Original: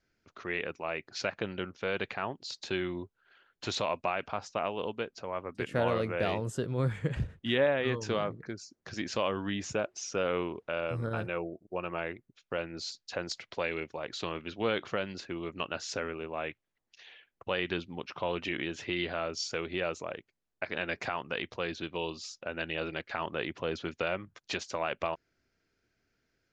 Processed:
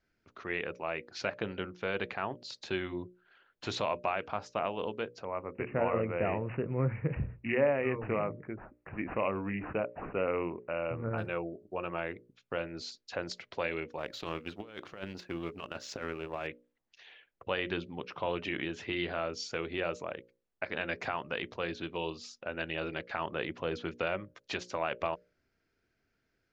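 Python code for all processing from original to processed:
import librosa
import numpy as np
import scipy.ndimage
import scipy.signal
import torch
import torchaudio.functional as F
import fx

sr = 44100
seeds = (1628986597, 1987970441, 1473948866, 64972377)

y = fx.chain(x, sr, fx.peak_eq(hz=1600.0, db=-6.0, octaves=0.33),
    fx.resample_bad(factor=8, down='none', up='filtered'), at=(5.25, 11.18))
y = fx.chain(y, sr, fx.law_mismatch(coded='A'),
    fx.over_compress(threshold_db=-37.0, ratio=-0.5), at=(13.98, 16.47))
y = fx.high_shelf(y, sr, hz=5500.0, db=-10.0)
y = fx.hum_notches(y, sr, base_hz=60, count=10)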